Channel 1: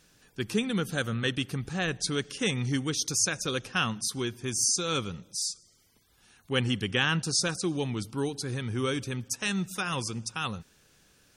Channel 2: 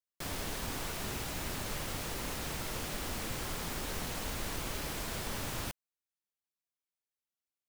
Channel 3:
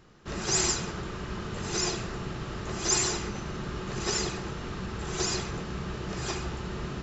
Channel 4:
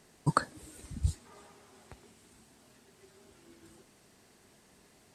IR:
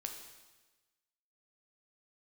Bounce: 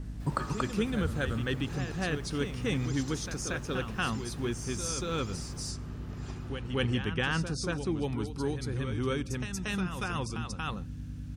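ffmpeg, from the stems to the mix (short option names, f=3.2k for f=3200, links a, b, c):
-filter_complex "[0:a]aeval=exprs='val(0)+0.01*(sin(2*PI*50*n/s)+sin(2*PI*2*50*n/s)/2+sin(2*PI*3*50*n/s)/3+sin(2*PI*4*50*n/s)/4+sin(2*PI*5*50*n/s)/5)':c=same,adynamicequalizer=threshold=0.00631:dfrequency=2600:dqfactor=0.7:tfrequency=2600:tqfactor=0.7:attack=5:release=100:ratio=0.375:range=3:mode=cutabove:tftype=highshelf,volume=2dB,asplit=2[a][b];[b]volume=-4dB[c];[1:a]volume=-15.5dB[d];[2:a]volume=-12.5dB[e];[3:a]volume=0.5dB,asplit=3[f][g][h];[g]volume=-5dB[i];[h]volume=-7dB[j];[a][f]amix=inputs=2:normalize=0,acompressor=threshold=-37dB:ratio=5,volume=0dB[k];[d][e]amix=inputs=2:normalize=0,alimiter=level_in=10.5dB:limit=-24dB:level=0:latency=1:release=148,volume=-10.5dB,volume=0dB[l];[4:a]atrim=start_sample=2205[m];[i][m]afir=irnorm=-1:irlink=0[n];[c][j]amix=inputs=2:normalize=0,aecho=0:1:232:1[o];[k][l][n][o]amix=inputs=4:normalize=0,highshelf=f=3.4k:g=-7.5,aeval=exprs='val(0)+0.00794*(sin(2*PI*60*n/s)+sin(2*PI*2*60*n/s)/2+sin(2*PI*3*60*n/s)/3+sin(2*PI*4*60*n/s)/4+sin(2*PI*5*60*n/s)/5)':c=same"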